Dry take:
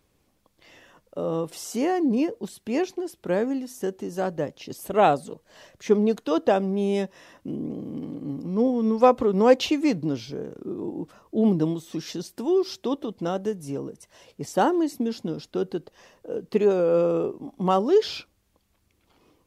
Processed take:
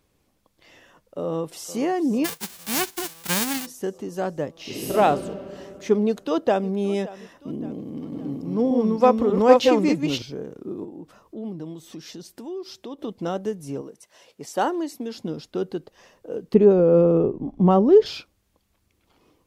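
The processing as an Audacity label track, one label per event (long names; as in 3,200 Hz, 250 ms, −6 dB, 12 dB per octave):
1.230000	1.730000	delay throw 450 ms, feedback 75%, level −14 dB
2.240000	3.650000	spectral envelope flattened exponent 0.1
4.520000	4.920000	thrown reverb, RT60 2.8 s, DRR −9 dB
6.060000	6.690000	delay throw 570 ms, feedback 50%, level −18 dB
7.820000	10.220000	delay that plays each chunk backwards 296 ms, level −2 dB
10.840000	12.990000	downward compressor 2 to 1, threshold −40 dBFS
13.810000	15.150000	high-pass filter 420 Hz 6 dB per octave
16.540000	18.060000	spectral tilt −4 dB per octave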